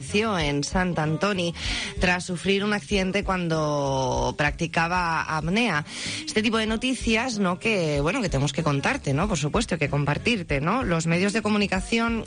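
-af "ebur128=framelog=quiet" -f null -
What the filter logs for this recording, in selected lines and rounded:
Integrated loudness:
  I:         -24.1 LUFS
  Threshold: -34.1 LUFS
Loudness range:
  LRA:         0.7 LU
  Threshold: -44.2 LUFS
  LRA low:   -24.5 LUFS
  LRA high:  -23.8 LUFS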